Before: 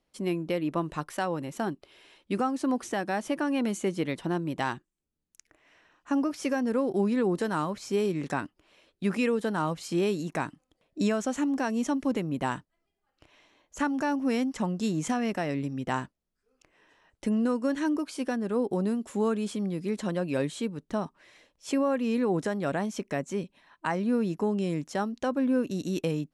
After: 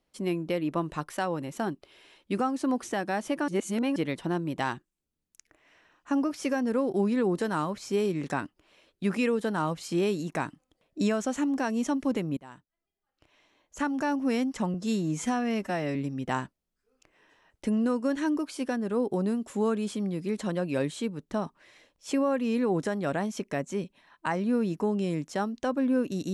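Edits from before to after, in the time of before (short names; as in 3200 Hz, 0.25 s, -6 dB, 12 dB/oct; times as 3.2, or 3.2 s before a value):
3.48–3.96 reverse
12.37–14.09 fade in, from -23 dB
14.74–15.55 stretch 1.5×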